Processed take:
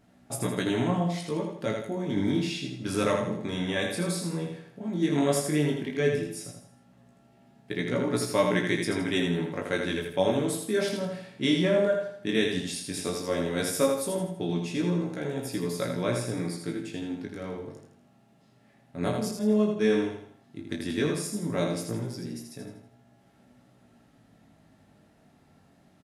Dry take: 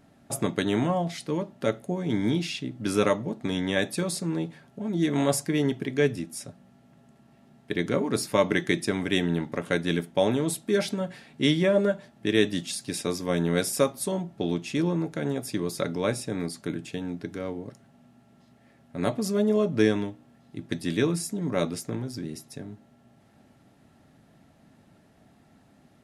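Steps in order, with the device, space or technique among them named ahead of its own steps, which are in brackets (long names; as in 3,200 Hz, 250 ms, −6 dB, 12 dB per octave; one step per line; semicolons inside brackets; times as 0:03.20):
double-tracked vocal (double-tracking delay 33 ms −11 dB; chorus effect 0.13 Hz, delay 16 ms, depth 7.4 ms)
0:19.31–0:19.85: downward expander −19 dBFS
repeating echo 81 ms, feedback 41%, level −5 dB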